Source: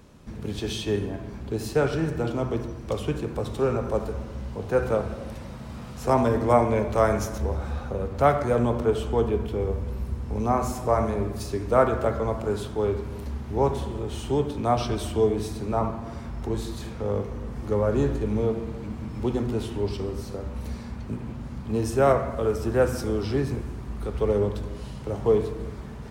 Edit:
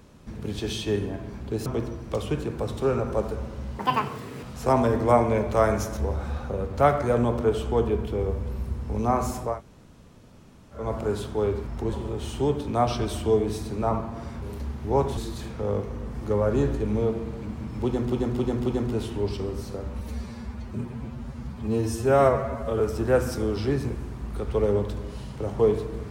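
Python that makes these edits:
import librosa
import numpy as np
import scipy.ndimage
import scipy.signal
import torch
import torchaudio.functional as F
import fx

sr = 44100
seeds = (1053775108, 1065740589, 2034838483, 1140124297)

y = fx.edit(x, sr, fx.cut(start_s=1.66, length_s=0.77),
    fx.speed_span(start_s=4.56, length_s=1.28, speed=2.0),
    fx.room_tone_fill(start_s=10.91, length_s=1.32, crossfade_s=0.24),
    fx.swap(start_s=13.08, length_s=0.75, other_s=16.32, other_length_s=0.26),
    fx.repeat(start_s=19.26, length_s=0.27, count=4),
    fx.stretch_span(start_s=20.6, length_s=1.87, factor=1.5), tone=tone)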